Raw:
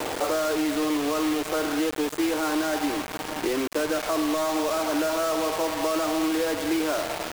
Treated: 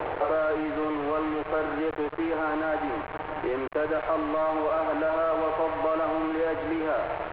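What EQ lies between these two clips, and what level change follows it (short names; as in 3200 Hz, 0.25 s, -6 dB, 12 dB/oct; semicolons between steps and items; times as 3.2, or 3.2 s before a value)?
Gaussian blur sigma 3.4 samples; air absorption 280 m; bell 240 Hz -13 dB 1 oct; +3.5 dB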